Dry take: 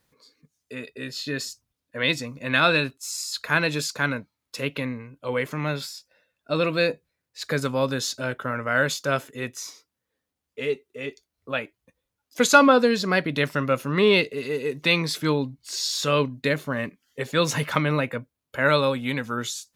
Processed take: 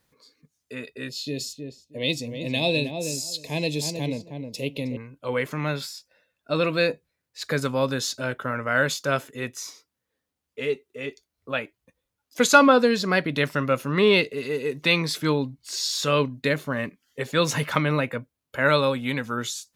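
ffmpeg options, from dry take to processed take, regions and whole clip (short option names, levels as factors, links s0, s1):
-filter_complex "[0:a]asettb=1/sr,asplit=3[s0][s1][s2];[s0]atrim=end=1.094[s3];[s1]atrim=start=1.09:end=4.97,asetpts=PTS-STARTPTS,afade=t=in:d=0.004:c=qsin,afade=t=out:st=3.876:d=0.004:c=qsin,asuperstop=centerf=1400:order=4:qfactor=0.7,asplit=2[s4][s5];[s5]adelay=315,lowpass=f=1100:p=1,volume=0.531,asplit=2[s6][s7];[s7]adelay=315,lowpass=f=1100:p=1,volume=0.17,asplit=2[s8][s9];[s9]adelay=315,lowpass=f=1100:p=1,volume=0.17[s10];[s4][s6][s8][s10]amix=inputs=4:normalize=0,atrim=end_sample=171108[s11];[s2]atrim=start=4.966[s12];[s3][s11]acrossfade=d=0.004:c1=hsin:c2=qsin[s13];[s13][s12]acrossfade=d=0.004:c1=qsin:c2=hsin"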